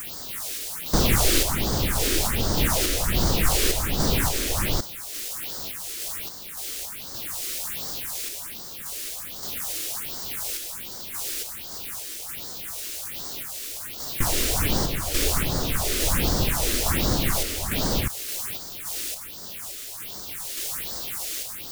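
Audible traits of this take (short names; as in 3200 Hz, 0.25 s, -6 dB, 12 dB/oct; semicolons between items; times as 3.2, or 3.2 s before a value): a quantiser's noise floor 6-bit, dither triangular; phasing stages 4, 1.3 Hz, lowest notch 140–2500 Hz; random-step tremolo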